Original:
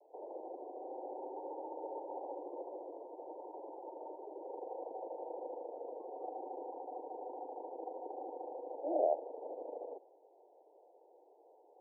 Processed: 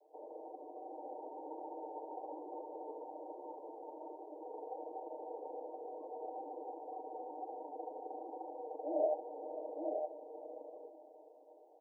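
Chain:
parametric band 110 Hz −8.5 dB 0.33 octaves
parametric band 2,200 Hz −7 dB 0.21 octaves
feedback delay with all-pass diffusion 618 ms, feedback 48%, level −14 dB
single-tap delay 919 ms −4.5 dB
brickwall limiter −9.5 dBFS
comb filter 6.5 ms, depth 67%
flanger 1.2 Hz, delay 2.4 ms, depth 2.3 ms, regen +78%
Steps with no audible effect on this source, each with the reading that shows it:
parametric band 110 Hz: nothing at its input below 250 Hz
parametric band 2,200 Hz: nothing at its input above 1,000 Hz
brickwall limiter −9.5 dBFS: peak of its input −19.5 dBFS

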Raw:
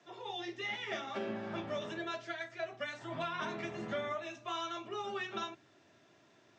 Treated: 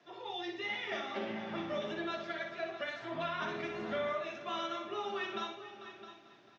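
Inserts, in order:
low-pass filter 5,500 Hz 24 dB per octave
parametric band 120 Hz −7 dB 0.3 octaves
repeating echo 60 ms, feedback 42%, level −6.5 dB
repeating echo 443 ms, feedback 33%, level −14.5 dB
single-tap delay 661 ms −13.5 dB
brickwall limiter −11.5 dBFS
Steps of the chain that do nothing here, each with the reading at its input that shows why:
brickwall limiter −11.5 dBFS: peak of its input −25.5 dBFS

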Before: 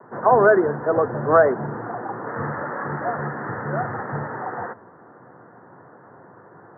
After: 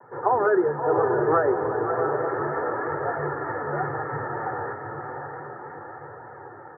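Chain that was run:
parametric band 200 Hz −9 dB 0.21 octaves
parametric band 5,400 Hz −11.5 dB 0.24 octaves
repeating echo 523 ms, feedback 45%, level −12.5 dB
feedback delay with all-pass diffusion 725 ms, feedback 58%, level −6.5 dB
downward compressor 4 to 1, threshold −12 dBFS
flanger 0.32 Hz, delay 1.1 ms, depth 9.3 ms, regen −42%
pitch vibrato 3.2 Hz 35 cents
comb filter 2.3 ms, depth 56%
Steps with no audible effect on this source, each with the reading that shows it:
parametric band 5,400 Hz: nothing at its input above 2,000 Hz

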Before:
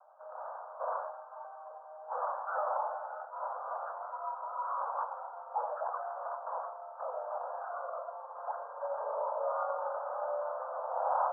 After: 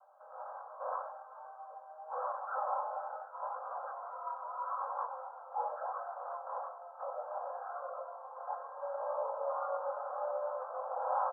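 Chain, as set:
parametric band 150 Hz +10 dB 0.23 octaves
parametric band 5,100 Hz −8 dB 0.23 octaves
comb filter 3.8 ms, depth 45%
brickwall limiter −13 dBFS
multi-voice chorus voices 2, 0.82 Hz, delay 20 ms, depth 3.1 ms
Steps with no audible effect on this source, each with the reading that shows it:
parametric band 150 Hz: nothing at its input below 430 Hz
parametric band 5,100 Hz: nothing at its input above 1,600 Hz
brickwall limiter −13 dBFS: peak of its input −18.5 dBFS

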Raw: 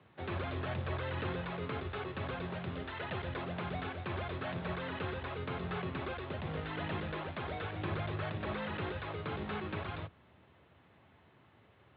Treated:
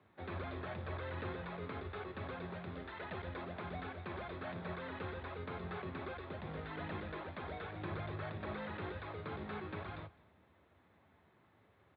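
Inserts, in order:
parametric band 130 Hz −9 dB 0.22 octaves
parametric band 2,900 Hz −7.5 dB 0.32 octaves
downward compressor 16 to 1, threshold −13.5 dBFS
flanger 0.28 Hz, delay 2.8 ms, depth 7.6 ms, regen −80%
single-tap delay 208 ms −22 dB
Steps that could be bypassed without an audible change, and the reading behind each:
downward compressor, threshold −13.5 dBFS: peak of its input −25.0 dBFS

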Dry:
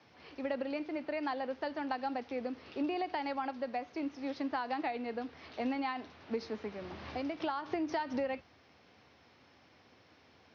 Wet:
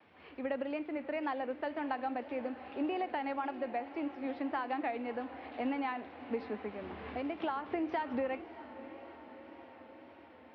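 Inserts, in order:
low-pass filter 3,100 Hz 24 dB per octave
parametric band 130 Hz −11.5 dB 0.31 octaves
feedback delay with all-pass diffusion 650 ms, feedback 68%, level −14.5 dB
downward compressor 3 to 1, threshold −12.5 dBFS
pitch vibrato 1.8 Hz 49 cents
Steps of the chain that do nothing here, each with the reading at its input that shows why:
downward compressor, threshold −12.5 dBFS: peak of its input −22.5 dBFS

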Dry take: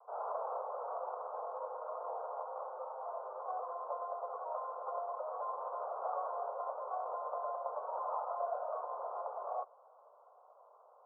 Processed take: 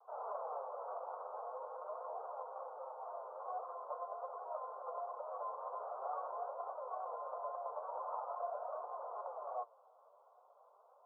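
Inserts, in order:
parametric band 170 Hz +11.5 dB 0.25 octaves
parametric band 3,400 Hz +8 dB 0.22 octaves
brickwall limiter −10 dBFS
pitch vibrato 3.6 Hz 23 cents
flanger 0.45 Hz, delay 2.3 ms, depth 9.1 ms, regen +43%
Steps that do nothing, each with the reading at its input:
parametric band 170 Hz: nothing at its input below 380 Hz
parametric band 3,400 Hz: nothing at its input above 1,500 Hz
brickwall limiter −10 dBFS: peak of its input −26.0 dBFS

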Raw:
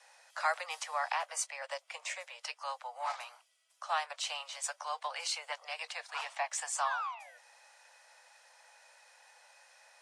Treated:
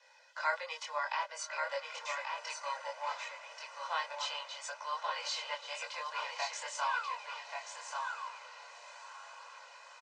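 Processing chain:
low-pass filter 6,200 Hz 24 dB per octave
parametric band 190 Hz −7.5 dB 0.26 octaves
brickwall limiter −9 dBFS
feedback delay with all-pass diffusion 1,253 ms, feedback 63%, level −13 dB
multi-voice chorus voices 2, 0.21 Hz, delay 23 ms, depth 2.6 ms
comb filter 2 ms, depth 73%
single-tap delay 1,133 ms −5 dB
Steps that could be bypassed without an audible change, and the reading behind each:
parametric band 190 Hz: nothing at its input below 430 Hz
brickwall limiter −9 dBFS: peak of its input −18.5 dBFS

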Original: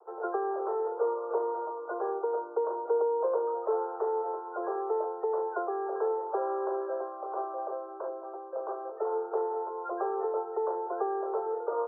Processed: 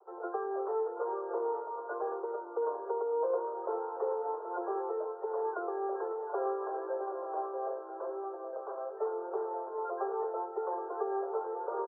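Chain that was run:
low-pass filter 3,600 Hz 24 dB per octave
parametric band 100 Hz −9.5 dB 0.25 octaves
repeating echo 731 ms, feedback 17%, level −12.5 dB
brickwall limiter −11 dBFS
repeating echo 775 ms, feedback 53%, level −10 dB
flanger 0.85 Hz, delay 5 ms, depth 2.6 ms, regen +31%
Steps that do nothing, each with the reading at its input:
low-pass filter 3,600 Hz: nothing at its input above 1,400 Hz
parametric band 100 Hz: nothing at its input below 320 Hz
brickwall limiter −11 dBFS: peak of its input −17.0 dBFS

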